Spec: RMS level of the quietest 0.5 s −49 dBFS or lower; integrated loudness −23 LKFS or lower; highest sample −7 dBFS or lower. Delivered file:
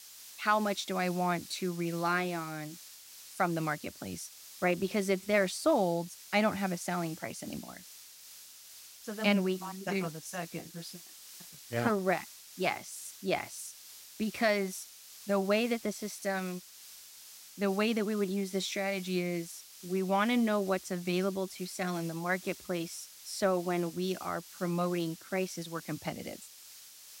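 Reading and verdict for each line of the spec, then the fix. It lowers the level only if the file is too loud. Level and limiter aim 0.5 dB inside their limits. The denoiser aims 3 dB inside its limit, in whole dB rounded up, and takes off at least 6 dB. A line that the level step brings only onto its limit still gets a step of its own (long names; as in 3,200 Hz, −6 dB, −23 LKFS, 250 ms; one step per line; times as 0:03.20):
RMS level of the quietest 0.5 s −52 dBFS: in spec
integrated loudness −33.0 LKFS: in spec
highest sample −12.5 dBFS: in spec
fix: no processing needed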